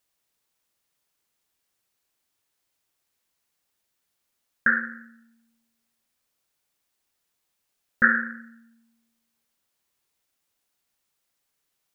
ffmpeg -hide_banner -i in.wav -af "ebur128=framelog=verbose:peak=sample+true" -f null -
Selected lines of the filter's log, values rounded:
Integrated loudness:
  I:         -23.4 LUFS
  Threshold: -36.5 LUFS
Loudness range:
  LRA:         2.8 LU
  Threshold: -51.4 LUFS
  LRA low:   -32.4 LUFS
  LRA high:  -29.6 LUFS
Sample peak:
  Peak:       -4.0 dBFS
True peak:
  Peak:       -3.9 dBFS